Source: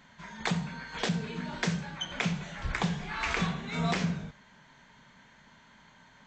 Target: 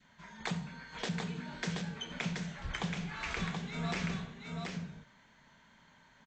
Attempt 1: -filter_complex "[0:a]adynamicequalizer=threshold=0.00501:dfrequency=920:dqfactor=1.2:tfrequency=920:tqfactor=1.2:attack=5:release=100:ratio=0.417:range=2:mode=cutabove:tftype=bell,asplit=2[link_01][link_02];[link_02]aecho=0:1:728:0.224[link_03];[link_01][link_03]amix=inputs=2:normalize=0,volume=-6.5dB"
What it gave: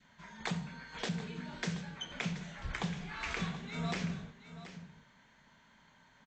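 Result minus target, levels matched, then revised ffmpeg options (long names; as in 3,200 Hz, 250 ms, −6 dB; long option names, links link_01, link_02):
echo-to-direct −9 dB
-filter_complex "[0:a]adynamicequalizer=threshold=0.00501:dfrequency=920:dqfactor=1.2:tfrequency=920:tqfactor=1.2:attack=5:release=100:ratio=0.417:range=2:mode=cutabove:tftype=bell,asplit=2[link_01][link_02];[link_02]aecho=0:1:728:0.631[link_03];[link_01][link_03]amix=inputs=2:normalize=0,volume=-6.5dB"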